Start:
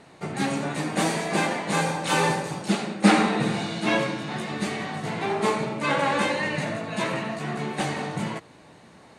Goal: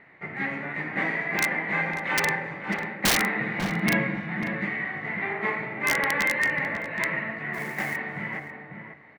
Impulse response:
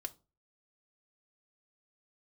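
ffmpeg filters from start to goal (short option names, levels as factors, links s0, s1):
-filter_complex "[0:a]lowpass=f=2000:t=q:w=9.4,aeval=exprs='(mod(2.11*val(0)+1,2)-1)/2.11':c=same,asettb=1/sr,asplit=3[s0][s1][s2];[s0]atrim=end=3.624[s3];[s1]atrim=start=3.62:end=4.17,asetpts=PTS-STARTPTS,afade=t=in:d=0.004:c=qsin,afade=t=out:st=0.546:d=0.004:c=qsin,equalizer=f=180:t=o:w=0.99:g=14.5[s4];[s2]atrim=start=4.166[s5];[s3][s4]acrossfade=d=0.004:c1=hsin:c2=qsin[s6];[s6][s5]acrossfade=d=0.004:c1=qsin:c2=hsin,asplit=3[s7][s8][s9];[s7]afade=t=out:st=7.53:d=0.02[s10];[s8]acrusher=bits=3:mode=log:mix=0:aa=0.000001,afade=t=in:st=7.53:d=0.02,afade=t=out:st=7.95:d=0.02[s11];[s9]afade=t=in:st=7.95:d=0.02[s12];[s10][s11][s12]amix=inputs=3:normalize=0,asplit=2[s13][s14];[s14]adelay=545,lowpass=f=1300:p=1,volume=0.531,asplit=2[s15][s16];[s16]adelay=545,lowpass=f=1300:p=1,volume=0.17,asplit=2[s17][s18];[s18]adelay=545,lowpass=f=1300:p=1,volume=0.17[s19];[s15][s17][s19]amix=inputs=3:normalize=0[s20];[s13][s20]amix=inputs=2:normalize=0,volume=0.376"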